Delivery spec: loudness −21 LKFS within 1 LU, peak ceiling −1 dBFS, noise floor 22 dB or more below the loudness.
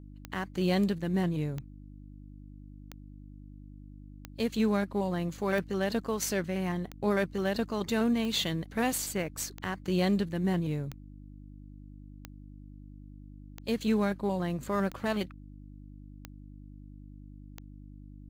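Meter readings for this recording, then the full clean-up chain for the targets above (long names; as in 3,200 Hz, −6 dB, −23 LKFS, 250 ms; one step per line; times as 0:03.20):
number of clicks 14; mains hum 50 Hz; hum harmonics up to 300 Hz; level of the hum −46 dBFS; integrated loudness −31.0 LKFS; sample peak −16.0 dBFS; target loudness −21.0 LKFS
→ click removal
hum removal 50 Hz, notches 6
level +10 dB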